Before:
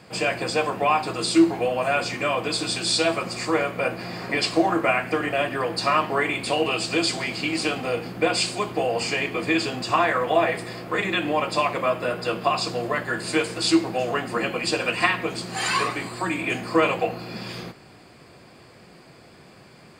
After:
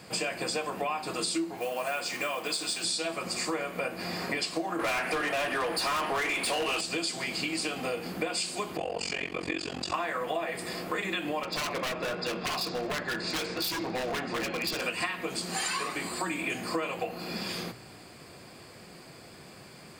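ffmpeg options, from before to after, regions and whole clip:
-filter_complex "[0:a]asettb=1/sr,asplit=3[a][b][c];[a]atrim=end=1.574[d];[b]atrim=start=1.57:end=2.84,asetpts=PTS-STARTPTS,afade=t=in:d=0.004:c=qsin,afade=t=out:st=1.266:d=0.004:c=qsin,lowshelf=f=230:g=-11.5,acrusher=bits=6:mode=log:mix=0:aa=0.000001[e];[c]atrim=start=2.836[f];[d][e]acrossfade=d=0.004:c1=hsin:c2=qsin[g];[g][f]acrossfade=d=0.004:c1=qsin:c2=hsin,asettb=1/sr,asplit=3[h][i][j];[h]atrim=end=4.794[k];[i]atrim=start=4.79:end=6.81,asetpts=PTS-STARTPTS,afade=t=in:d=0.004:c=qsin,afade=t=out:st=2.016:d=0.004:c=qsin,equalizer=f=9.8k:w=5.3:g=14.5,asplit=2[l][m];[m]highpass=f=720:p=1,volume=22dB,asoftclip=type=tanh:threshold=-8dB[n];[l][n]amix=inputs=2:normalize=0,lowpass=f=2.4k:p=1,volume=-6dB,aeval=exprs='0.237*(abs(mod(val(0)/0.237+3,4)-2)-1)':c=same[o];[j]atrim=start=6.806[p];[k][o]acrossfade=d=0.004:c1=hsin:c2=qsin[q];[q][p]acrossfade=d=0.004:c1=qsin:c2=hsin,asettb=1/sr,asplit=3[r][s][t];[r]atrim=end=8.774[u];[s]atrim=start=8.77:end=9.94,asetpts=PTS-STARTPTS,afade=t=in:d=0.004:c=qsin,afade=t=out:st=1.166:d=0.004:c=qsin,lowpass=7.5k,tremolo=f=45:d=0.974[v];[t]atrim=start=9.936[w];[u][v]acrossfade=d=0.004:c1=hsin:c2=qsin[x];[x][w]acrossfade=d=0.004:c1=qsin:c2=hsin,asettb=1/sr,asplit=3[y][z][aa];[y]atrim=end=11.434[ab];[z]atrim=start=11.43:end=14.82,asetpts=PTS-STARTPTS,afade=t=in:d=0.004:c=qsin,afade=t=out:st=3.386:d=0.004:c=qsin,lowpass=f=5.3k:w=0.5412,lowpass=f=5.3k:w=1.3066,bandreject=f=3k:w=9.1,aeval=exprs='0.0794*(abs(mod(val(0)/0.0794+3,4)-2)-1)':c=same[ac];[aa]atrim=start=14.816[ad];[ab][ac]acrossfade=d=0.004:c1=hsin:c2=qsin[ae];[ae][ad]acrossfade=d=0.004:c1=qsin:c2=hsin,highshelf=f=6k:g=10,bandreject=f=60:t=h:w=6,bandreject=f=120:t=h:w=6,acompressor=threshold=-28dB:ratio=6,volume=-1dB"

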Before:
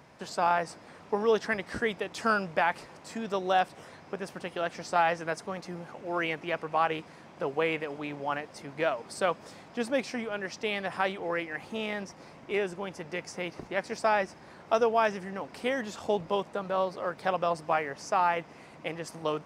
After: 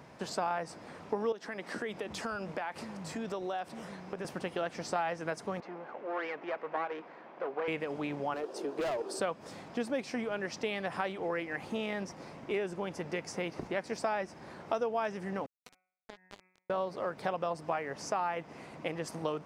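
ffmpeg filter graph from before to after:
-filter_complex "[0:a]asettb=1/sr,asplit=3[a][b][c];[a]atrim=end=1.324[d];[b]atrim=start=1.32:end=4.25,asetpts=PTS-STARTPTS,afade=t=in:d=0.004:c=qsin,afade=t=out:st=2.926:d=0.004:c=qsin,acrossover=split=160[e][f];[e]adelay=570[g];[g][f]amix=inputs=2:normalize=0,atrim=end_sample=129213,acompressor=threshold=-37dB:ratio=3:attack=3.2:release=140:knee=1:detection=peak[h];[c]atrim=start=4.246[i];[d][h]acrossfade=d=0.004:c1=hsin:c2=qsin[j];[j][i]acrossfade=d=0.004:c1=qsin:c2=hsin,asettb=1/sr,asplit=3[k][l][m];[k]atrim=end=5.604[n];[l]atrim=start=5.6:end=7.68,asetpts=PTS-STARTPTS,afade=t=in:d=0.004:c=qsin,afade=t=out:st=2.076:d=0.004:c=qsin,aeval=exprs='clip(val(0),-1,0.0133)':c=same,highpass=390,lowpass=2.2k[o];[m]atrim=start=7.676[p];[n][o]acrossfade=d=0.004:c1=hsin:c2=qsin[q];[q][p]acrossfade=d=0.004:c1=qsin:c2=hsin,asettb=1/sr,asplit=3[r][s][t];[r]atrim=end=8.344[u];[s]atrim=start=8.34:end=9.2,asetpts=PTS-STARTPTS,afade=t=in:d=0.004:c=qsin,afade=t=out:st=0.856:d=0.004:c=qsin,highpass=f=380:t=q:w=4.5,equalizer=f=2.1k:w=6.4:g=-13.5,asoftclip=type=hard:threshold=-30.5dB[v];[t]atrim=start=9.196[w];[u][v]acrossfade=d=0.004:c1=hsin:c2=qsin[x];[x][w]acrossfade=d=0.004:c1=qsin:c2=hsin,asettb=1/sr,asplit=3[y][z][aa];[y]atrim=end=15.464[ab];[z]atrim=start=15.46:end=16.7,asetpts=PTS-STARTPTS,afade=t=in:d=0.004:c=qsin,afade=t=out:st=1.236:d=0.004:c=qsin,acrusher=bits=2:mix=0:aa=0.5,bandreject=f=184.6:t=h:w=4,bandreject=f=369.2:t=h:w=4,bandreject=f=553.8:t=h:w=4,bandreject=f=738.4:t=h:w=4,bandreject=f=923:t=h:w=4,bandreject=f=1.1076k:t=h:w=4,bandreject=f=1.2922k:t=h:w=4,bandreject=f=1.4768k:t=h:w=4,bandreject=f=1.6614k:t=h:w=4,bandreject=f=1.846k:t=h:w=4,bandreject=f=2.0306k:t=h:w=4,bandreject=f=2.2152k:t=h:w=4,bandreject=f=2.3998k:t=h:w=4,bandreject=f=2.5844k:t=h:w=4,acompressor=threshold=-51dB:ratio=3:attack=3.2:release=140:knee=1:detection=peak[ac];[aa]atrim=start=16.696[ad];[ab][ac]acrossfade=d=0.004:c1=hsin:c2=qsin[ae];[ae][ad]acrossfade=d=0.004:c1=qsin:c2=hsin,equalizer=f=260:w=0.31:g=3.5,acompressor=threshold=-32dB:ratio=3"

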